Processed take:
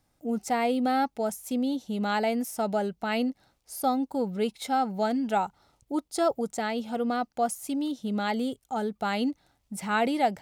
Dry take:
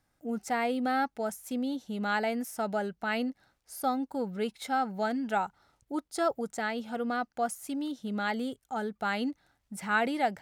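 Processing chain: peaking EQ 1.6 kHz -7.5 dB 0.74 oct; trim +4.5 dB

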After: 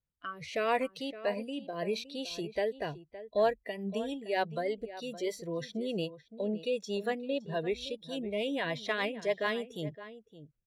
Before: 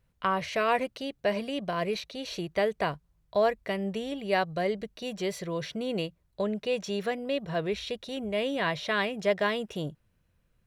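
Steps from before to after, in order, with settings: rotary cabinet horn 0.8 Hz, later 6.7 Hz, at 2.86 s; in parallel at -10.5 dB: hard clipper -26 dBFS, distortion -12 dB; on the sum: spectral noise reduction 17 dB; echo from a far wall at 97 m, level -14 dB; trim -3 dB

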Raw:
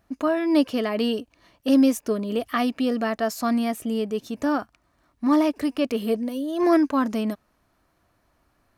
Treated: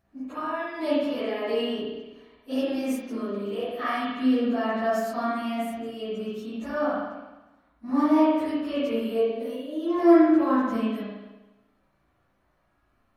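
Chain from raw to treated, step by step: plain phase-vocoder stretch 1.5×; spring tank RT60 1.1 s, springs 35/50 ms, chirp 40 ms, DRR -8 dB; trim -8 dB

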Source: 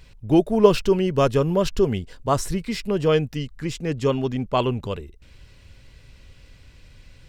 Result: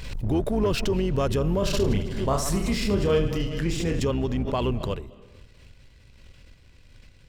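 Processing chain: octave divider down 2 oct, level -2 dB; waveshaping leveller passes 1; peak limiter -10.5 dBFS, peak gain reduction 9 dB; 1.59–4.00 s: reverse bouncing-ball echo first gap 30 ms, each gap 1.5×, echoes 5; reverberation RT60 0.95 s, pre-delay 167 ms, DRR 18.5 dB; swell ahead of each attack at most 46 dB/s; trim -6 dB

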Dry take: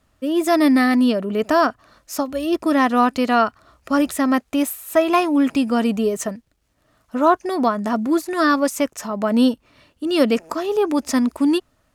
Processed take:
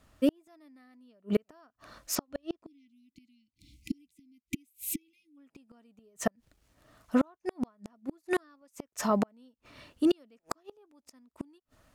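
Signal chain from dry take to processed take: 2.15–2.91 s: low-pass 6 kHz 12 dB/octave; inverted gate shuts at -15 dBFS, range -42 dB; 2.66–5.37 s: spectral selection erased 340–2000 Hz

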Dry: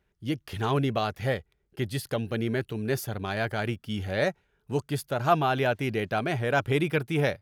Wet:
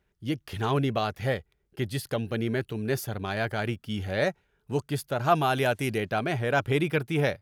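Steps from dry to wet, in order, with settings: 5.35–5.98 s: peaking EQ 9.6 kHz +13 dB 1.2 oct

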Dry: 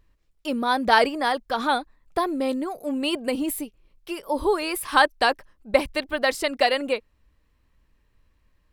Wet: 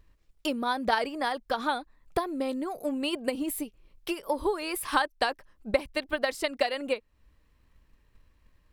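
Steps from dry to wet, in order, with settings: transient shaper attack +7 dB, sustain +1 dB; compression 2:1, threshold -32 dBFS, peak gain reduction 14.5 dB

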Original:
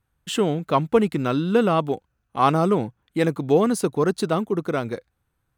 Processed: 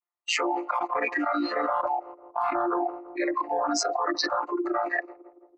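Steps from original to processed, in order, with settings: vocoder on a held chord major triad, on A#2; steep high-pass 350 Hz 72 dB/octave; static phaser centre 2.3 kHz, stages 8; dynamic bell 820 Hz, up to -4 dB, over -44 dBFS, Q 3.5; in parallel at -6.5 dB: hard clipper -30.5 dBFS, distortion -8 dB; on the sum: gate with hold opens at -54 dBFS; on a send: filtered feedback delay 166 ms, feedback 65%, low-pass 900 Hz, level -19.5 dB; on the sum: spectral noise reduction 25 dB; peaking EQ 1.6 kHz +8.5 dB 0.62 oct; level flattener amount 100%; trim -4.5 dB

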